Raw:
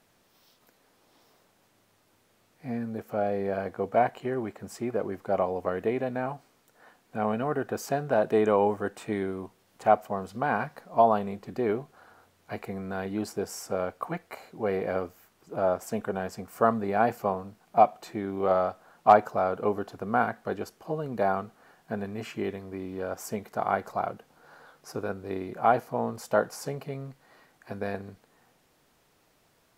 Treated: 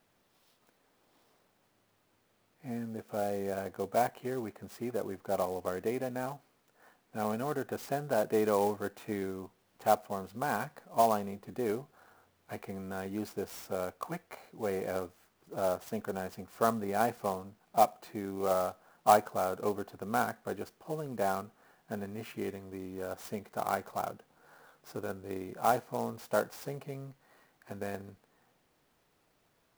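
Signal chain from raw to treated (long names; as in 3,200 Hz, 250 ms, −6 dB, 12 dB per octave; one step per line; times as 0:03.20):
converter with an unsteady clock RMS 0.031 ms
level −5.5 dB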